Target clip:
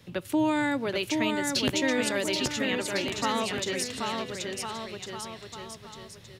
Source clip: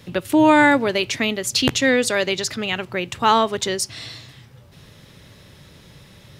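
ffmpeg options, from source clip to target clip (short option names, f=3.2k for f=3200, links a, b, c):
-filter_complex "[0:a]acrossover=split=320|3000[a][b][c];[b]acompressor=threshold=-18dB:ratio=6[d];[a][d][c]amix=inputs=3:normalize=0,aecho=1:1:780|1404|1903|2303|2622:0.631|0.398|0.251|0.158|0.1,volume=-8.5dB"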